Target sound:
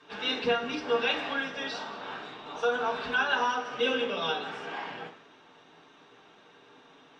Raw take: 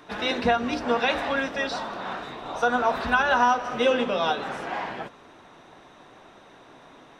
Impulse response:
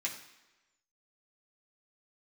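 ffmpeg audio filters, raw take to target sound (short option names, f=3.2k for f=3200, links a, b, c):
-filter_complex "[0:a]lowpass=f=7.1k:w=0.5412,lowpass=f=7.1k:w=1.3066[a];[1:a]atrim=start_sample=2205,asetrate=61740,aresample=44100[b];[a][b]afir=irnorm=-1:irlink=0,volume=-3dB"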